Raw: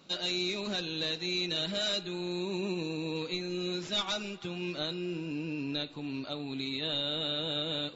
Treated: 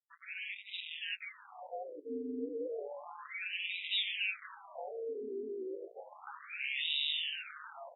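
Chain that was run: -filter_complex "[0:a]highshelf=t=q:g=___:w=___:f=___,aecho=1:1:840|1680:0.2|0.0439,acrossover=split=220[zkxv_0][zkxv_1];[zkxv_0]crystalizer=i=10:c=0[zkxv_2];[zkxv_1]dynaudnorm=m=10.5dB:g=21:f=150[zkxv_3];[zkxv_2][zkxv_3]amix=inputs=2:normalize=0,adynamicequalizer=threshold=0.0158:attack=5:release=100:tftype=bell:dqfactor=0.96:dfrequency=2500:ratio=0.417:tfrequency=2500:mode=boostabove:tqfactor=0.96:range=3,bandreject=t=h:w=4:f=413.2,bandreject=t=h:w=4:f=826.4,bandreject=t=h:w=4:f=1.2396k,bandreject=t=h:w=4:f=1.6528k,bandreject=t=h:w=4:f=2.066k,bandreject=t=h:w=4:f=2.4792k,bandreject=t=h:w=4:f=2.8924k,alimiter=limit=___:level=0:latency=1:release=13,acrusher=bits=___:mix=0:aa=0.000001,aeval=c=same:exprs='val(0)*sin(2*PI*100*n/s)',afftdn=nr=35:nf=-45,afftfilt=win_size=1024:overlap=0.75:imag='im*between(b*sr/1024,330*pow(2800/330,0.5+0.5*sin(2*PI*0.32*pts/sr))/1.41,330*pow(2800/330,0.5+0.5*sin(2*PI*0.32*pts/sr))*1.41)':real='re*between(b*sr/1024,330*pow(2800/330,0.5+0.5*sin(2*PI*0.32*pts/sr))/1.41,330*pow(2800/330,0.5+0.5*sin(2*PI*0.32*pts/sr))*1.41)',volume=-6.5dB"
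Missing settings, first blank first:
-6, 3, 3.9k, -15dB, 4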